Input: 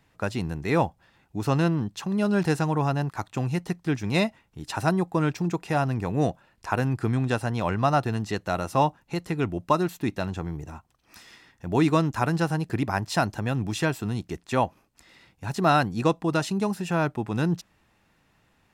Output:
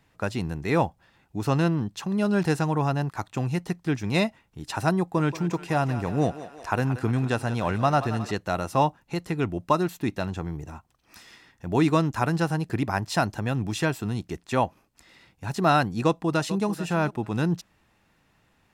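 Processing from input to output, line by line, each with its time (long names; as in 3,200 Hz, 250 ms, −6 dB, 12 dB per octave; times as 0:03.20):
0:04.99–0:08.31: feedback echo with a high-pass in the loop 179 ms, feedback 67%, level −12 dB
0:16.05–0:16.66: delay throw 440 ms, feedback 10%, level −14 dB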